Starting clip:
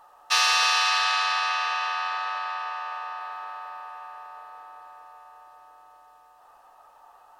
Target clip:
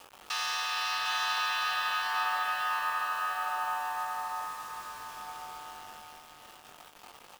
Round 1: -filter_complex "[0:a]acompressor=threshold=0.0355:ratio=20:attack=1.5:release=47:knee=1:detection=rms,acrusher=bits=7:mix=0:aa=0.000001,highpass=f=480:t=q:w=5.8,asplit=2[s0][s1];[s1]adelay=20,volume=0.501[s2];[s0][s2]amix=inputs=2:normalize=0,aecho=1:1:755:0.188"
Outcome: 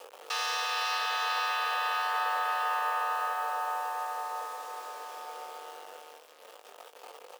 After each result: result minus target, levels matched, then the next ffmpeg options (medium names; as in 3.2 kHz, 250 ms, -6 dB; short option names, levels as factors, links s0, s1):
500 Hz band +7.5 dB; echo-to-direct -9.5 dB
-filter_complex "[0:a]acompressor=threshold=0.0355:ratio=20:attack=1.5:release=47:knee=1:detection=rms,acrusher=bits=7:mix=0:aa=0.000001,asplit=2[s0][s1];[s1]adelay=20,volume=0.501[s2];[s0][s2]amix=inputs=2:normalize=0,aecho=1:1:755:0.188"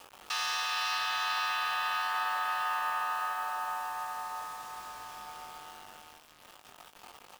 echo-to-direct -9.5 dB
-filter_complex "[0:a]acompressor=threshold=0.0355:ratio=20:attack=1.5:release=47:knee=1:detection=rms,acrusher=bits=7:mix=0:aa=0.000001,asplit=2[s0][s1];[s1]adelay=20,volume=0.501[s2];[s0][s2]amix=inputs=2:normalize=0,aecho=1:1:755:0.562"